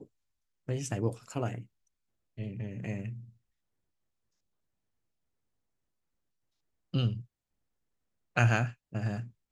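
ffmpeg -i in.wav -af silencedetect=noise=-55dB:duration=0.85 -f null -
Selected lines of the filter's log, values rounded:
silence_start: 3.30
silence_end: 6.93 | silence_duration: 3.63
silence_start: 7.25
silence_end: 8.36 | silence_duration: 1.11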